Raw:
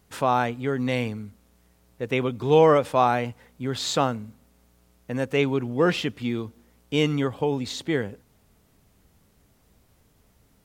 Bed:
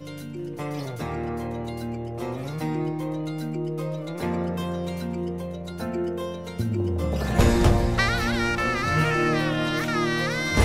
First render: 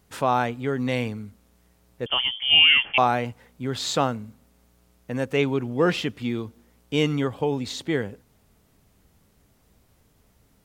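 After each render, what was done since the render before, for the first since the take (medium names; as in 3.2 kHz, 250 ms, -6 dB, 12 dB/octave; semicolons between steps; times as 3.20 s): 2.06–2.98 s: frequency inversion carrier 3.3 kHz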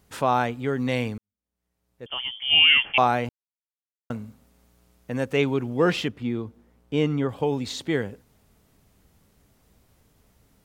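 1.18–2.71 s: fade in quadratic; 3.29–4.10 s: mute; 6.08–7.29 s: treble shelf 2.4 kHz -11.5 dB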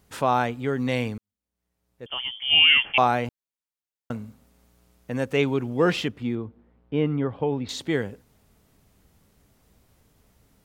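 6.35–7.69 s: distance through air 340 m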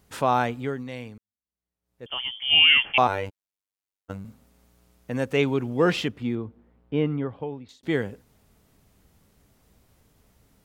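0.58–2.08 s: dip -11 dB, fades 0.27 s; 3.07–4.25 s: robot voice 97.1 Hz; 6.97–7.83 s: fade out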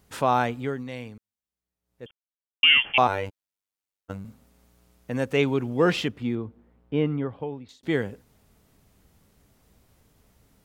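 2.11–2.63 s: mute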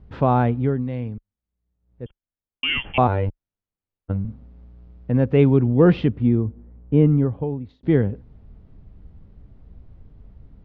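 low-pass 4.5 kHz 24 dB/octave; tilt EQ -4.5 dB/octave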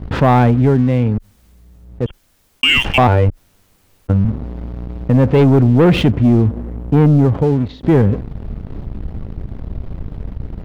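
waveshaping leveller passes 2; level flattener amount 50%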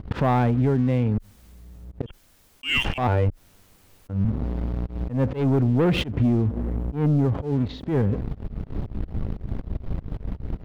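compression 10:1, threshold -17 dBFS, peak gain reduction 10 dB; slow attack 131 ms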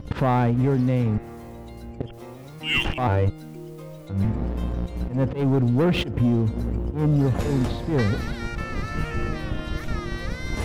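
add bed -9.5 dB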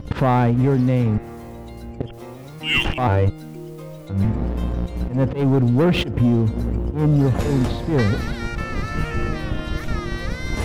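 trim +3.5 dB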